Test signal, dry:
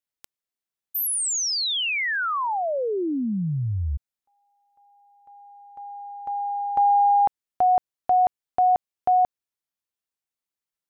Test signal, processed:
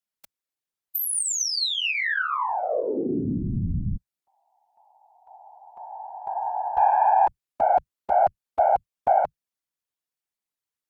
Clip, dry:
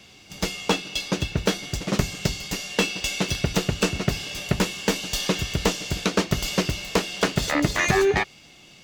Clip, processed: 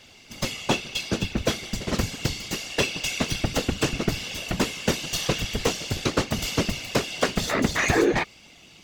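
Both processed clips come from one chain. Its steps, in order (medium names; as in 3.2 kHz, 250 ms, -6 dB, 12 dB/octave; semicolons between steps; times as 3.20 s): valve stage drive 8 dB, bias 0.3; whisper effect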